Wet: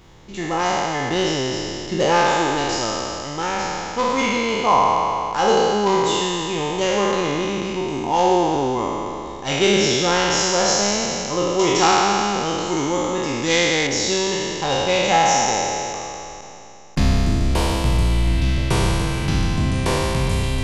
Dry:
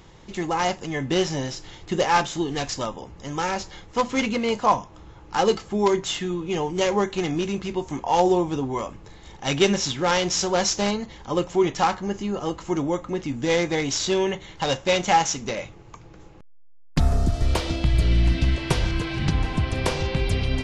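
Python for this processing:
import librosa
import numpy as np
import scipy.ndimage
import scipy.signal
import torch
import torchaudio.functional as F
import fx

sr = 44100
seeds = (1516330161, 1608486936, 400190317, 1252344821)

y = fx.spec_trails(x, sr, decay_s=2.95)
y = fx.high_shelf(y, sr, hz=2100.0, db=10.5, at=(11.59, 13.87))
y = F.gain(torch.from_numpy(y), -1.5).numpy()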